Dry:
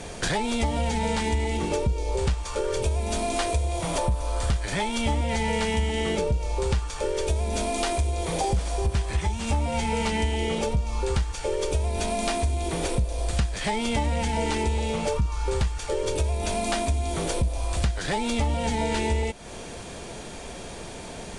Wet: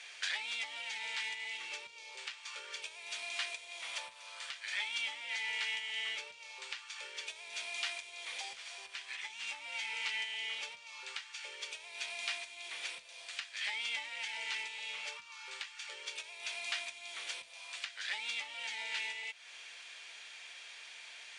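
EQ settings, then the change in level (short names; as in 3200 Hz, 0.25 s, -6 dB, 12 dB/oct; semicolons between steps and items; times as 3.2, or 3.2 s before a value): ladder band-pass 2900 Hz, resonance 30%; +6.0 dB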